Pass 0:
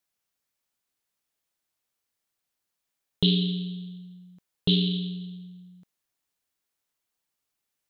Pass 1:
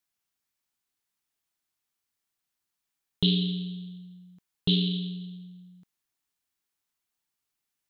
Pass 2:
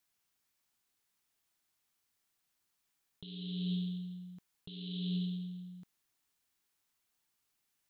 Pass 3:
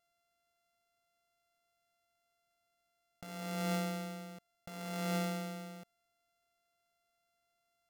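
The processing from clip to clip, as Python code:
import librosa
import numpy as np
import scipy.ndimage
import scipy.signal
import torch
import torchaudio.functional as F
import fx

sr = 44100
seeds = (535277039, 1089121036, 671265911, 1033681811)

y1 = fx.peak_eq(x, sr, hz=540.0, db=-7.5, octaves=0.5)
y1 = y1 * librosa.db_to_amplitude(-1.5)
y2 = fx.over_compress(y1, sr, threshold_db=-36.0, ratio=-1.0)
y2 = y2 * librosa.db_to_amplitude(-3.0)
y3 = np.r_[np.sort(y2[:len(y2) // 64 * 64].reshape(-1, 64), axis=1).ravel(), y2[len(y2) // 64 * 64:]]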